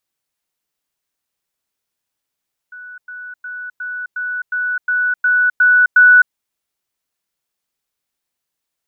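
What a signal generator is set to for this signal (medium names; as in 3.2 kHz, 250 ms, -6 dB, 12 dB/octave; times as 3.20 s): level ladder 1.48 kHz -31.5 dBFS, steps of 3 dB, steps 10, 0.26 s 0.10 s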